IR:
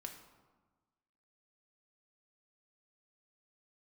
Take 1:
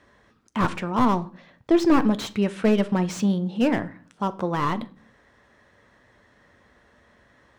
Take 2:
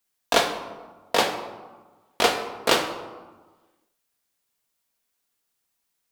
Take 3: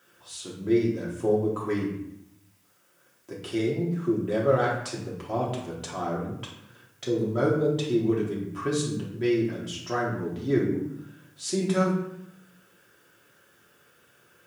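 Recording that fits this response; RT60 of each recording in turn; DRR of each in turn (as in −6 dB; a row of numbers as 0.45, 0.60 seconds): 2; non-exponential decay, 1.3 s, 0.80 s; 11.5, 3.0, −5.0 decibels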